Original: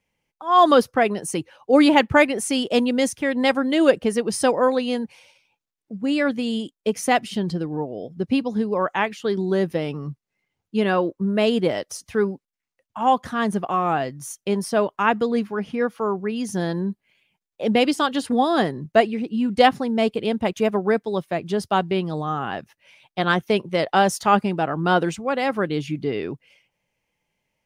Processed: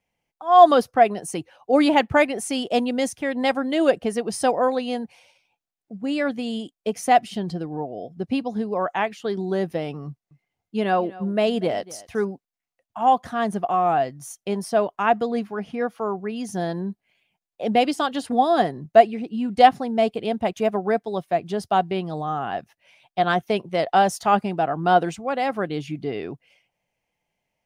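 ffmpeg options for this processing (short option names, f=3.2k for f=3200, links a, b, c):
-filter_complex "[0:a]asettb=1/sr,asplit=3[a][b][c];[a]atrim=end=10.074[d];[b]atrim=start=10.07:end=12.26,asetpts=PTS-STARTPTS,afade=t=in:d=0.004:c=qsin,afade=t=out:st=2.186:d=0.004:c=qsin,aecho=1:1:239:0.106,atrim=end_sample=96579[e];[c]atrim=start=12.256[f];[d][e]acrossfade=d=0.004:c1=hsin:c2=qsin[g];[g][f]acrossfade=d=0.004:c1=qsin:c2=hsin,equalizer=f=710:t=o:w=0.27:g=10.5,volume=-3.5dB"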